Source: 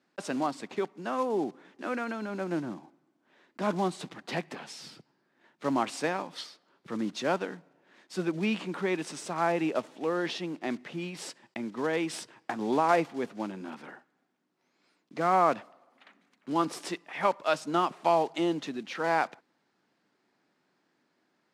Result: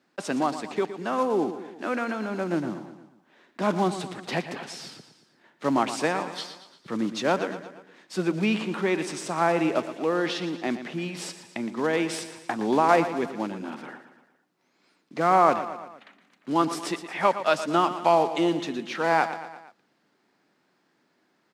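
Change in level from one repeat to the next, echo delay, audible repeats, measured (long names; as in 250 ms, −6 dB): −5.0 dB, 116 ms, 4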